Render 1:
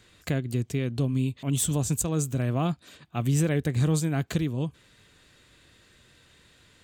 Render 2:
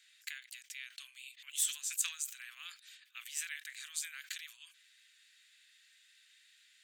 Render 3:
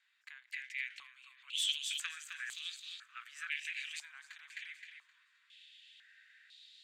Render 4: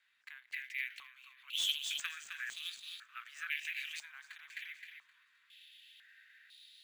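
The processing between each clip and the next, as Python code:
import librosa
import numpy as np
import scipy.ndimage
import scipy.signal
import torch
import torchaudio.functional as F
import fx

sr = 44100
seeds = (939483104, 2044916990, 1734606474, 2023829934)

y1 = scipy.signal.sosfilt(scipy.signal.butter(6, 1700.0, 'highpass', fs=sr, output='sos'), x)
y1 = fx.sustainer(y1, sr, db_per_s=140.0)
y1 = y1 * 10.0 ** (-4.5 / 20.0)
y2 = fx.echo_feedback(y1, sr, ms=261, feedback_pct=45, wet_db=-7.0)
y2 = fx.filter_held_bandpass(y2, sr, hz=2.0, low_hz=880.0, high_hz=3900.0)
y2 = y2 * 10.0 ** (10.5 / 20.0)
y3 = np.interp(np.arange(len(y2)), np.arange(len(y2))[::3], y2[::3])
y3 = y3 * 10.0 ** (1.5 / 20.0)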